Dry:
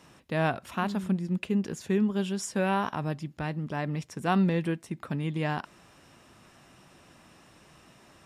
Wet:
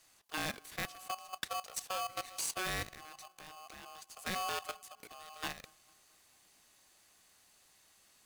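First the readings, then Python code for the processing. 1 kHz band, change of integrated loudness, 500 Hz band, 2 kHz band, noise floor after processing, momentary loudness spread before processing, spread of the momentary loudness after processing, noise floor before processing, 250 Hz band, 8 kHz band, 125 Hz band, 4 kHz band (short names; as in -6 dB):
-8.0 dB, -10.5 dB, -15.0 dB, -6.0 dB, -67 dBFS, 8 LU, 15 LU, -58 dBFS, -24.0 dB, +2.0 dB, -22.5 dB, +1.0 dB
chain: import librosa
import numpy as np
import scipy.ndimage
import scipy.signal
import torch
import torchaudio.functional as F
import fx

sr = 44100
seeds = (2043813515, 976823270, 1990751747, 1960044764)

p1 = scipy.signal.lfilter([1.0, -0.9], [1.0], x)
p2 = fx.level_steps(p1, sr, step_db=15)
p3 = p2 + fx.echo_wet_lowpass(p2, sr, ms=225, feedback_pct=54, hz=490.0, wet_db=-22.0, dry=0)
p4 = p3 * np.sign(np.sin(2.0 * np.pi * 930.0 * np.arange(len(p3)) / sr))
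y = F.gain(torch.from_numpy(p4), 8.5).numpy()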